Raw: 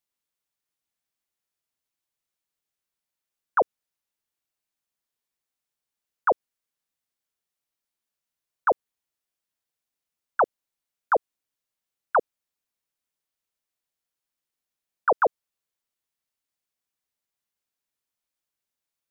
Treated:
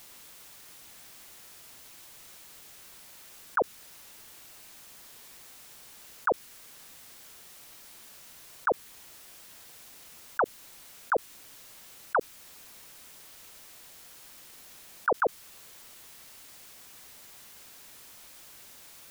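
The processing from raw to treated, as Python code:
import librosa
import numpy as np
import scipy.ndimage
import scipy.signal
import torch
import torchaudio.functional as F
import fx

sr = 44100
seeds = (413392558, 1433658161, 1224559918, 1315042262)

y = fx.dynamic_eq(x, sr, hz=630.0, q=1.0, threshold_db=-35.0, ratio=4.0, max_db=-6)
y = fx.env_flatten(y, sr, amount_pct=100)
y = y * 10.0 ** (-3.5 / 20.0)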